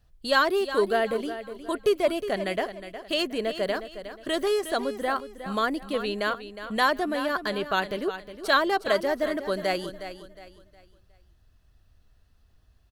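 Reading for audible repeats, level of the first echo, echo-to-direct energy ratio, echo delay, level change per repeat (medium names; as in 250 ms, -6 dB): 3, -11.5 dB, -11.0 dB, 362 ms, -9.5 dB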